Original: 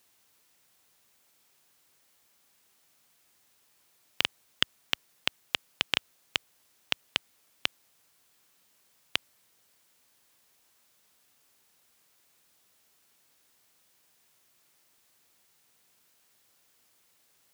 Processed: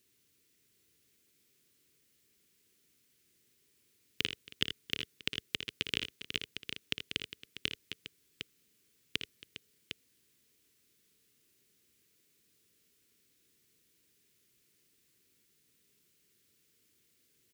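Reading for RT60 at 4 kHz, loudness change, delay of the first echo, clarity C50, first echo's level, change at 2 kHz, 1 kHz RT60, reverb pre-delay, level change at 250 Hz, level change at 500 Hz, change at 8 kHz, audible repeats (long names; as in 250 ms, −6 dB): no reverb audible, −6.5 dB, 57 ms, no reverb audible, −10.0 dB, −5.0 dB, no reverb audible, no reverb audible, +2.5 dB, −2.0 dB, −4.5 dB, 4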